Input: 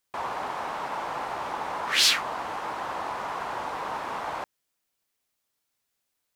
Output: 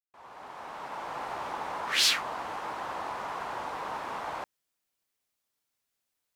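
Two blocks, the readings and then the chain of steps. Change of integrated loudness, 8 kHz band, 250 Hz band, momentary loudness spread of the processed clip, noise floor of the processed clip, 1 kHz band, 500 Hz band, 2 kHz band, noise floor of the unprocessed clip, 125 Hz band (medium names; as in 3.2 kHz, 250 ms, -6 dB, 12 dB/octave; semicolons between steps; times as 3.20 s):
-3.5 dB, -3.5 dB, -4.5 dB, 19 LU, -83 dBFS, -4.5 dB, -4.5 dB, -4.0 dB, -80 dBFS, -4.5 dB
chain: fade-in on the opening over 1.33 s; trim -3.5 dB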